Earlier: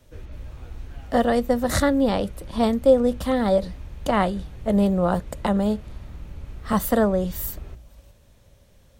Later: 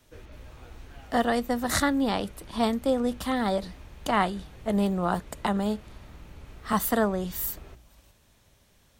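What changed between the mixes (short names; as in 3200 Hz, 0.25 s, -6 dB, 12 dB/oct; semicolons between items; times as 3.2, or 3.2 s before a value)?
speech: add bell 540 Hz -10 dB 0.38 oct; master: add low shelf 210 Hz -10.5 dB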